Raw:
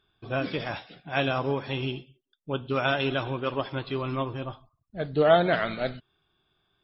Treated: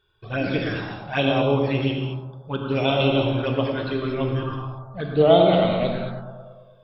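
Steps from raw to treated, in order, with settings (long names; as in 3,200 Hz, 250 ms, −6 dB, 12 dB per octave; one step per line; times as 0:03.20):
bucket-brigade delay 109 ms, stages 1,024, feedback 65%, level −5 dB
flanger swept by the level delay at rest 2.1 ms, full sweep at −22 dBFS
reverb whose tail is shaped and stops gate 250 ms flat, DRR 3 dB
level +5 dB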